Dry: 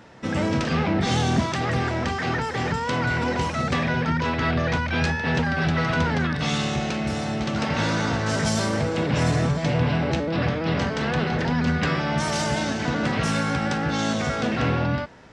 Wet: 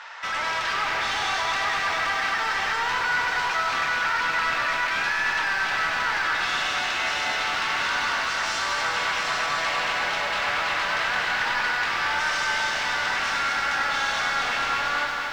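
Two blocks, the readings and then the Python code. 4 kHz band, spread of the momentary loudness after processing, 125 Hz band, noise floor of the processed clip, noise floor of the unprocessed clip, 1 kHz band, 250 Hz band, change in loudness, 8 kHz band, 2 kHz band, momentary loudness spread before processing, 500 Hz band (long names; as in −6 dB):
+4.0 dB, 1 LU, −24.0 dB, −27 dBFS, −28 dBFS, +3.0 dB, −21.0 dB, 0.0 dB, 0.0 dB, +5.5 dB, 3 LU, −9.0 dB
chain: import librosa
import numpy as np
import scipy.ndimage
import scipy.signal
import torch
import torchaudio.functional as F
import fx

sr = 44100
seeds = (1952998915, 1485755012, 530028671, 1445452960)

p1 = scipy.signal.sosfilt(scipy.signal.butter(4, 980.0, 'highpass', fs=sr, output='sos'), x)
p2 = fx.over_compress(p1, sr, threshold_db=-35.0, ratio=-1.0)
p3 = p1 + (p2 * librosa.db_to_amplitude(0.5))
p4 = 10.0 ** (-30.5 / 20.0) * np.tanh(p3 / 10.0 ** (-30.5 / 20.0))
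p5 = fx.air_absorb(p4, sr, metres=110.0)
p6 = fx.doubler(p5, sr, ms=26.0, db=-13)
p7 = p6 + 10.0 ** (-7.0 / 20.0) * np.pad(p6, (int(96 * sr / 1000.0), 0))[:len(p6)]
p8 = fx.echo_crushed(p7, sr, ms=230, feedback_pct=80, bits=10, wet_db=-6.0)
y = p8 * librosa.db_to_amplitude(6.0)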